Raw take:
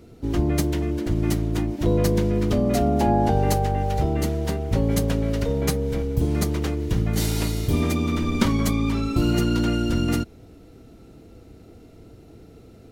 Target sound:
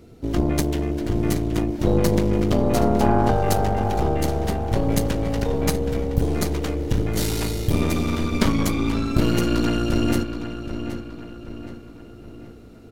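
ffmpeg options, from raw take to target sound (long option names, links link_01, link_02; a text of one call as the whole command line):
ffmpeg -i in.wav -filter_complex "[0:a]aeval=exprs='0.531*(cos(1*acos(clip(val(0)/0.531,-1,1)))-cos(1*PI/2))+0.119*(cos(4*acos(clip(val(0)/0.531,-1,1)))-cos(4*PI/2))':channel_layout=same,asplit=2[link_01][link_02];[link_02]adelay=773,lowpass=frequency=4300:poles=1,volume=-9.5dB,asplit=2[link_03][link_04];[link_04]adelay=773,lowpass=frequency=4300:poles=1,volume=0.47,asplit=2[link_05][link_06];[link_06]adelay=773,lowpass=frequency=4300:poles=1,volume=0.47,asplit=2[link_07][link_08];[link_08]adelay=773,lowpass=frequency=4300:poles=1,volume=0.47,asplit=2[link_09][link_10];[link_10]adelay=773,lowpass=frequency=4300:poles=1,volume=0.47[link_11];[link_01][link_03][link_05][link_07][link_09][link_11]amix=inputs=6:normalize=0" out.wav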